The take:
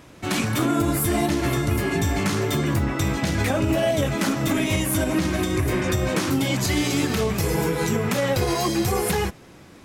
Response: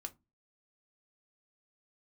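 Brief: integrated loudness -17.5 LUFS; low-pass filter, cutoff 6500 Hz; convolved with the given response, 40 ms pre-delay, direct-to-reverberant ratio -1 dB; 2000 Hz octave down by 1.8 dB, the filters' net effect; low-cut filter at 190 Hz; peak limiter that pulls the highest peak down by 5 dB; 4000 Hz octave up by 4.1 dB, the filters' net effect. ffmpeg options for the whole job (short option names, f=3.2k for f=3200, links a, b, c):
-filter_complex "[0:a]highpass=190,lowpass=6.5k,equalizer=f=2k:t=o:g=-4,equalizer=f=4k:t=o:g=7,alimiter=limit=-16dB:level=0:latency=1,asplit=2[a][b];[1:a]atrim=start_sample=2205,adelay=40[c];[b][c]afir=irnorm=-1:irlink=0,volume=4.5dB[d];[a][d]amix=inputs=2:normalize=0,volume=4.5dB"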